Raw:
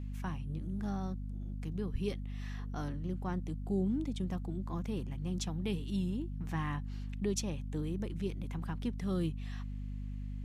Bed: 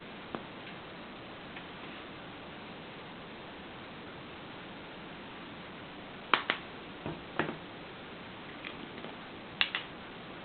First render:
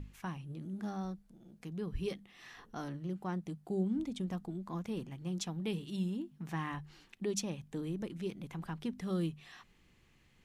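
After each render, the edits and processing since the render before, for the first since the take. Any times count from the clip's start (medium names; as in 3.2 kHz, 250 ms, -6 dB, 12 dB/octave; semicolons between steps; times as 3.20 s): hum notches 50/100/150/200/250 Hz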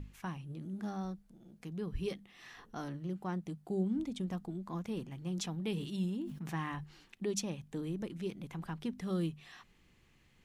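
5.14–6.84 s: decay stretcher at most 62 dB/s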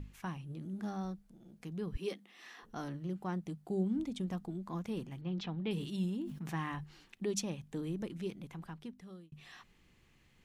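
1.97–2.63 s: high-pass 220 Hz 24 dB/octave; 5.21–5.71 s: low-pass 3.9 kHz 24 dB/octave; 8.17–9.32 s: fade out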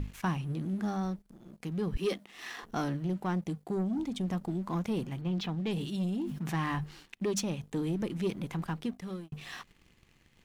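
waveshaping leveller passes 2; gain riding within 4 dB 0.5 s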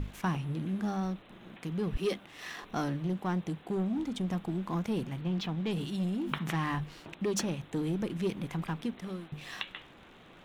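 add bed -9.5 dB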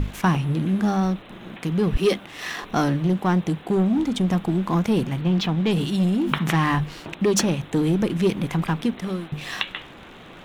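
trim +11.5 dB; peak limiter -3 dBFS, peak gain reduction 1 dB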